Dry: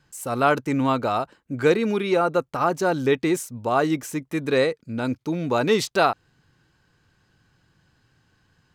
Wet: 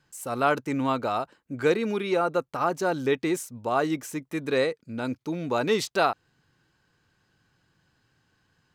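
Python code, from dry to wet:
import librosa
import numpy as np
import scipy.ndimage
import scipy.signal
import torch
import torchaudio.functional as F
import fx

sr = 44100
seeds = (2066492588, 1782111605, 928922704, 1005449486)

y = fx.low_shelf(x, sr, hz=130.0, db=-6.0)
y = y * 10.0 ** (-3.5 / 20.0)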